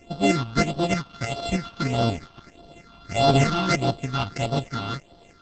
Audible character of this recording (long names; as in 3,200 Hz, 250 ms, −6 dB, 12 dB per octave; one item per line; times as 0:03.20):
a buzz of ramps at a fixed pitch in blocks of 64 samples
phaser sweep stages 6, 1.6 Hz, lowest notch 510–2,000 Hz
tremolo saw up 3.2 Hz, depth 50%
Opus